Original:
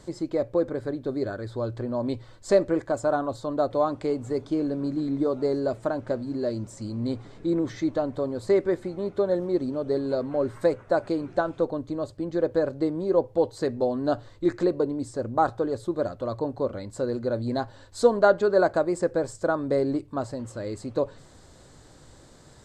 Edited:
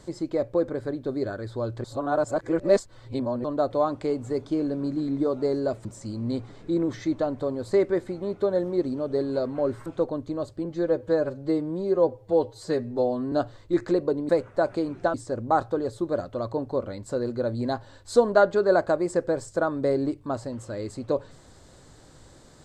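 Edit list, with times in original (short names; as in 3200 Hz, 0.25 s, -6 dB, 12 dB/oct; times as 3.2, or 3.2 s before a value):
1.84–3.44 reverse
5.85–6.61 cut
10.62–11.47 move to 15.01
12.26–14.04 stretch 1.5×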